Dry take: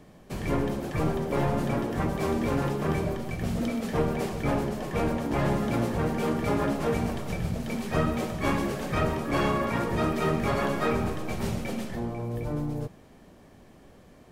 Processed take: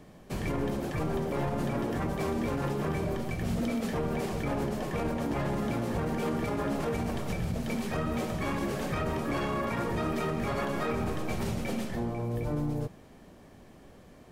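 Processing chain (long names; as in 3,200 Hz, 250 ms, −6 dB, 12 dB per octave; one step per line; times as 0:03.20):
brickwall limiter −22.5 dBFS, peak gain reduction 9 dB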